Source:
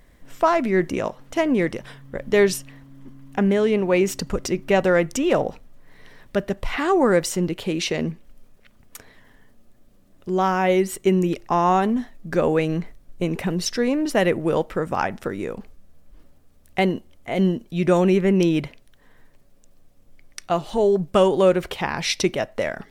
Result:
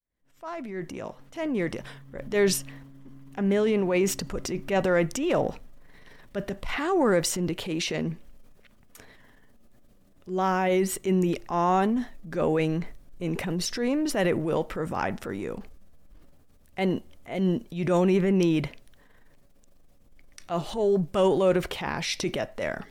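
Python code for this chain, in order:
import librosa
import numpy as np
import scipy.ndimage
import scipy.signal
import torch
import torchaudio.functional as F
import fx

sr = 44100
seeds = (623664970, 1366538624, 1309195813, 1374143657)

y = fx.fade_in_head(x, sr, length_s=2.16)
y = fx.transient(y, sr, attack_db=-7, sustain_db=5)
y = y * librosa.db_to_amplitude(-4.0)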